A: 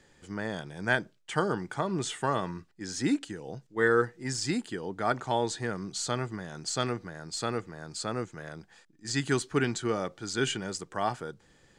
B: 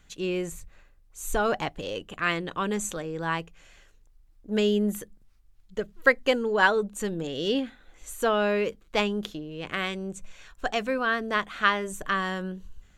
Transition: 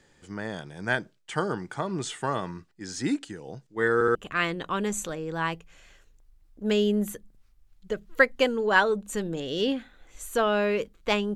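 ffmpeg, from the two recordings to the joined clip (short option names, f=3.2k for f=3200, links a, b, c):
-filter_complex "[0:a]apad=whole_dur=11.35,atrim=end=11.35,asplit=3[a][b][c];[a]atrim=end=4.012[d];[b]atrim=start=3.938:end=4.012[e];[c]atrim=start=3.938:end=4.012[f];[1:a]atrim=start=2.018:end=9.22[g];[d][e]acrossfade=d=0.004:c1=hsin:c2=hsin[h];[h][f]acrossfade=d=0.004:c1=hsin:c2=hsin[i];[i][g]acrossfade=d=0.004:c1=hsin:c2=hsin"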